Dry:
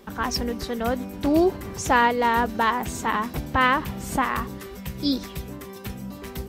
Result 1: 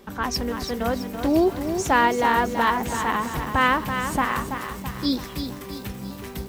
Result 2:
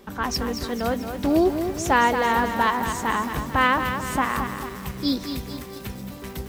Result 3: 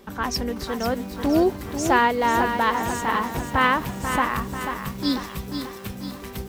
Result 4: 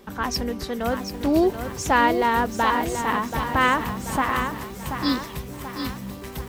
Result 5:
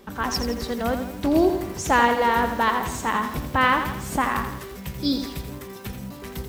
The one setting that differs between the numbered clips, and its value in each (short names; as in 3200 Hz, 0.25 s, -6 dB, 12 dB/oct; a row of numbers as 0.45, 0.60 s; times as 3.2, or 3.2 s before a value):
lo-fi delay, time: 331, 222, 490, 733, 84 ms